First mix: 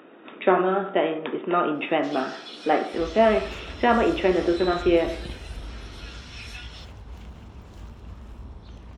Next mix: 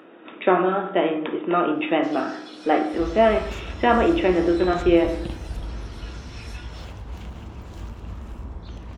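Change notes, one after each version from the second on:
first sound: add peaking EQ 3.1 kHz -6 dB 1 oct; second sound +5.0 dB; reverb: on, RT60 0.75 s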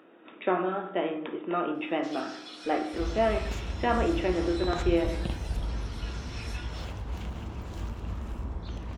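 speech -8.5 dB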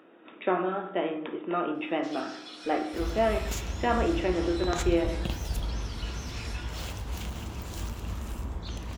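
second sound: remove low-pass 1.8 kHz 6 dB/octave

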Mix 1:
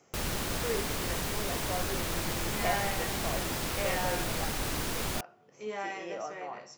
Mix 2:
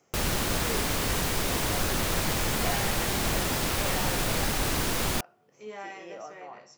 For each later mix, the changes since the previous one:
speech -3.5 dB; background +5.5 dB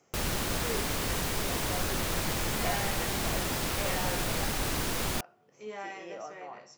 background -3.5 dB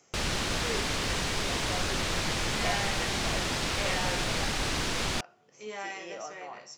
background: add distance through air 95 m; master: add treble shelf 2.2 kHz +9.5 dB

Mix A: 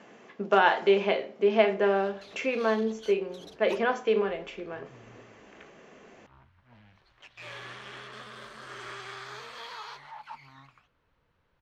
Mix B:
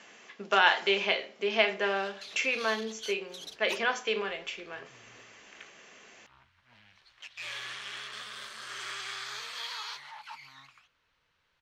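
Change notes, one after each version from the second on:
master: add tilt shelf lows -10 dB, about 1.3 kHz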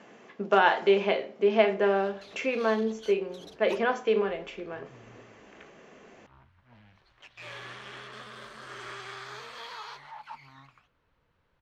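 master: add tilt shelf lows +10 dB, about 1.3 kHz

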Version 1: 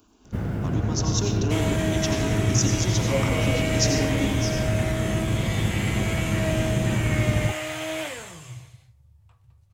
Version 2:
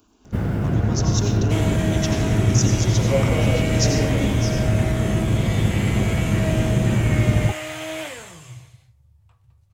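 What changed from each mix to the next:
first sound +5.0 dB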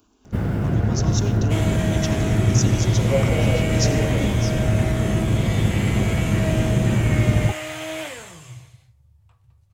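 speech: send -11.5 dB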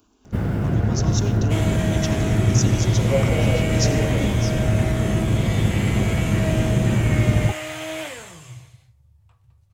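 no change

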